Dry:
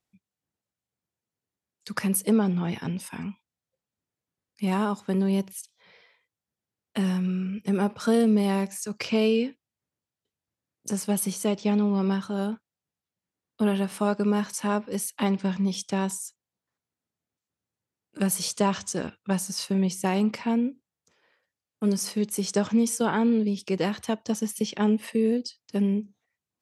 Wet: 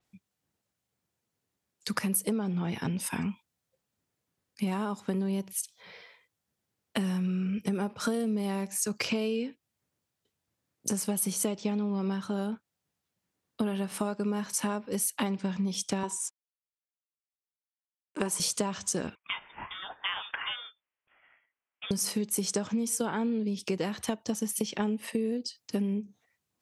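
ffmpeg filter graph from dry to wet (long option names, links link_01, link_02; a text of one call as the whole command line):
ffmpeg -i in.wav -filter_complex "[0:a]asettb=1/sr,asplit=3[link_01][link_02][link_03];[link_01]atrim=end=16.034[link_04];[link_02]atrim=start=16.03:end=18.4,asetpts=PTS-STARTPTS,afade=type=in:duration=0.004:curve=qsin,afade=type=out:start_time=2.366:duration=0.004:curve=qsin,aeval=exprs='sgn(val(0))*max(abs(val(0))-0.00237,0)':channel_layout=same,highpass=260,equalizer=frequency=370:width_type=q:width=4:gain=6,equalizer=frequency=1000:width_type=q:width=4:gain=10,equalizer=frequency=4400:width_type=q:width=4:gain=-5,lowpass=frequency=9300:width=0.5412,lowpass=frequency=9300:width=1.3066[link_05];[link_03]atrim=start=18.396[link_06];[link_04][link_05]acrossfade=duration=0.004:curve1=hsin:curve2=qsin[link_07];[link_07][link_06]acrossfade=duration=0.004:curve1=qsin:curve2=hsin,asettb=1/sr,asplit=3[link_08][link_09][link_10];[link_08]atrim=end=19.154[link_11];[link_09]atrim=start=19.15:end=21.91,asetpts=PTS-STARTPTS,afade=type=in:duration=0.004:curve=qsin,afade=type=out:start_time=2.756:duration=0.004:curve=qsin,highpass=1300,lowpass=frequency=3200:width_type=q:width=0.5098,lowpass=frequency=3200:width_type=q:width=0.6013,lowpass=frequency=3200:width_type=q:width=0.9,lowpass=frequency=3200:width_type=q:width=2.563,afreqshift=-3800[link_12];[link_10]atrim=start=21.906[link_13];[link_11][link_12]acrossfade=duration=0.004:curve1=hsin:curve2=qsin[link_14];[link_14][link_13]acrossfade=duration=0.004:curve1=qsin:curve2=hsin,acompressor=threshold=-34dB:ratio=6,adynamicequalizer=threshold=0.00251:dfrequency=7000:dqfactor=0.7:tfrequency=7000:tqfactor=0.7:attack=5:release=100:ratio=0.375:range=2.5:mode=boostabove:tftype=highshelf,volume=6dB" out.wav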